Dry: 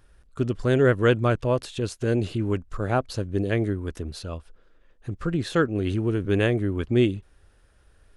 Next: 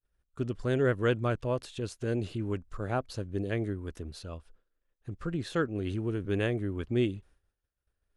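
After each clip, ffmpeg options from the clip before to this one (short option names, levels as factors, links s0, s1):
-af "agate=range=0.0224:threshold=0.00631:ratio=3:detection=peak,volume=0.422"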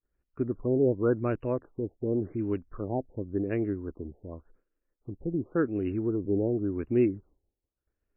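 -af "equalizer=f=310:t=o:w=1.2:g=9,afftfilt=real='re*lt(b*sr/1024,880*pow(3000/880,0.5+0.5*sin(2*PI*0.9*pts/sr)))':imag='im*lt(b*sr/1024,880*pow(3000/880,0.5+0.5*sin(2*PI*0.9*pts/sr)))':win_size=1024:overlap=0.75,volume=0.708"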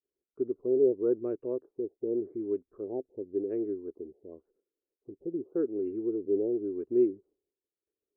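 -af "bandpass=f=400:t=q:w=4.3:csg=0,volume=1.41"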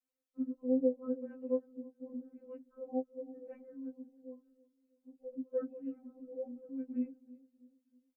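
-filter_complex "[0:a]asplit=2[s0][s1];[s1]adelay=321,lowpass=f=990:p=1,volume=0.112,asplit=2[s2][s3];[s3]adelay=321,lowpass=f=990:p=1,volume=0.46,asplit=2[s4][s5];[s5]adelay=321,lowpass=f=990:p=1,volume=0.46,asplit=2[s6][s7];[s7]adelay=321,lowpass=f=990:p=1,volume=0.46[s8];[s0][s2][s4][s6][s8]amix=inputs=5:normalize=0,afftfilt=real='re*3.46*eq(mod(b,12),0)':imag='im*3.46*eq(mod(b,12),0)':win_size=2048:overlap=0.75,volume=1.12"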